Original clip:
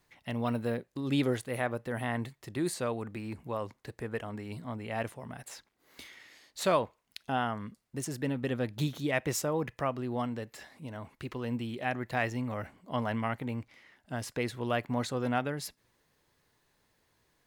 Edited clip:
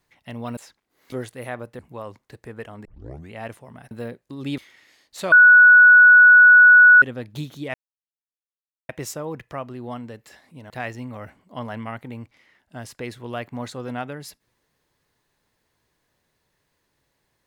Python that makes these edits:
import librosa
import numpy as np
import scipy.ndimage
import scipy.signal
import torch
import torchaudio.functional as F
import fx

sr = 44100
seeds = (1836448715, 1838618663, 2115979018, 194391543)

y = fx.edit(x, sr, fx.swap(start_s=0.57, length_s=0.67, other_s=5.46, other_length_s=0.55),
    fx.cut(start_s=1.91, length_s=1.43),
    fx.tape_start(start_s=4.4, length_s=0.47),
    fx.bleep(start_s=6.75, length_s=1.7, hz=1470.0, db=-6.5),
    fx.insert_silence(at_s=9.17, length_s=1.15),
    fx.cut(start_s=10.98, length_s=1.09), tone=tone)